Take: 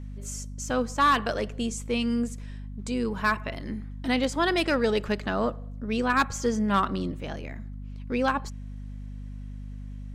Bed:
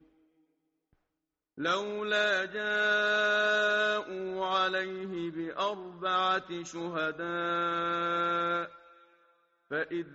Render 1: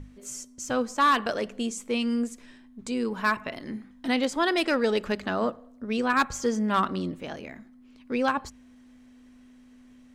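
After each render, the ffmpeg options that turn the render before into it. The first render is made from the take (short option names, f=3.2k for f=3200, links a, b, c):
-af "bandreject=f=50:t=h:w=6,bandreject=f=100:t=h:w=6,bandreject=f=150:t=h:w=6,bandreject=f=200:t=h:w=6"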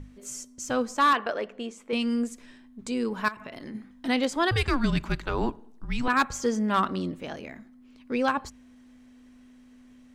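-filter_complex "[0:a]asettb=1/sr,asplit=3[a][b][c];[a]atrim=end=1.134[d];[b]atrim=start=1.13:end=1.93,asetpts=PTS-STARTPTS,afade=t=in:d=0.004:c=qsin,afade=t=out:st=0.796:d=0.004:c=qsin,bass=f=250:g=-12,treble=f=4k:g=-15[e];[c]atrim=start=1.926[f];[d][e]acrossfade=d=0.004:c1=hsin:c2=qsin[g];[g][f]acrossfade=d=0.004:c1=qsin:c2=hsin,asettb=1/sr,asplit=3[h][i][j];[h]atrim=end=3.284[k];[i]atrim=start=3.28:end=3.75,asetpts=PTS-STARTPTS,afade=t=in:d=0.004:c=qsin,afade=t=out:st=0.466:d=0.004:c=qsin,acompressor=threshold=-35dB:ratio=8:attack=3.2:release=140:knee=1:detection=peak[l];[j]atrim=start=3.746[m];[k][l]acrossfade=d=0.004:c1=hsin:c2=qsin[n];[n][m]acrossfade=d=0.004:c1=qsin:c2=hsin,asettb=1/sr,asplit=3[o][p][q];[o]atrim=end=4.514[r];[p]atrim=start=4.51:end=6.08,asetpts=PTS-STARTPTS,afade=t=in:d=0.004:c=qsin,afade=t=out:st=1.566:d=0.004:c=qsin,afreqshift=-250[s];[q]atrim=start=6.076[t];[r][s]acrossfade=d=0.004:c1=hsin:c2=qsin[u];[u][t]acrossfade=d=0.004:c1=qsin:c2=hsin"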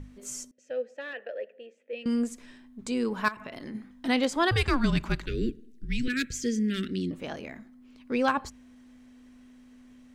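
-filter_complex "[0:a]asettb=1/sr,asplit=3[a][b][c];[a]atrim=end=0.514[d];[b]atrim=start=0.51:end=2.06,asetpts=PTS-STARTPTS,afade=t=in:d=0.004:c=qsin,afade=t=out:st=1.546:d=0.004:c=qsin,asplit=3[e][f][g];[e]bandpass=f=530:t=q:w=8,volume=0dB[h];[f]bandpass=f=1.84k:t=q:w=8,volume=-6dB[i];[g]bandpass=f=2.48k:t=q:w=8,volume=-9dB[j];[h][i][j]amix=inputs=3:normalize=0[k];[c]atrim=start=2.056[l];[d][k]acrossfade=d=0.004:c1=hsin:c2=qsin[m];[m][l]acrossfade=d=0.004:c1=qsin:c2=hsin,asettb=1/sr,asplit=3[n][o][p];[n]atrim=end=5.264[q];[o]atrim=start=5.26:end=7.11,asetpts=PTS-STARTPTS,afade=t=in:d=0.004:c=qsin,afade=t=out:st=1.846:d=0.004:c=qsin,asuperstop=centerf=870:order=8:qfactor=0.65[r];[p]atrim=start=7.106[s];[q][r]acrossfade=d=0.004:c1=hsin:c2=qsin[t];[t][s]acrossfade=d=0.004:c1=qsin:c2=hsin"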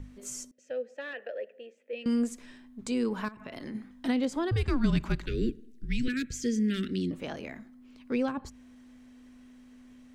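-filter_complex "[0:a]acrossover=split=430[a][b];[b]acompressor=threshold=-35dB:ratio=10[c];[a][c]amix=inputs=2:normalize=0"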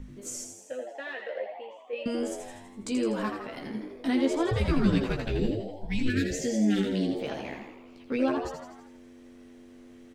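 -filter_complex "[0:a]asplit=2[a][b];[b]adelay=15,volume=-4.5dB[c];[a][c]amix=inputs=2:normalize=0,asplit=8[d][e][f][g][h][i][j][k];[e]adelay=82,afreqshift=92,volume=-6.5dB[l];[f]adelay=164,afreqshift=184,volume=-11.4dB[m];[g]adelay=246,afreqshift=276,volume=-16.3dB[n];[h]adelay=328,afreqshift=368,volume=-21.1dB[o];[i]adelay=410,afreqshift=460,volume=-26dB[p];[j]adelay=492,afreqshift=552,volume=-30.9dB[q];[k]adelay=574,afreqshift=644,volume=-35.8dB[r];[d][l][m][n][o][p][q][r]amix=inputs=8:normalize=0"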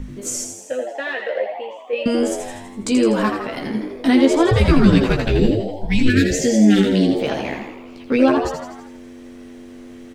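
-af "volume=12dB,alimiter=limit=-3dB:level=0:latency=1"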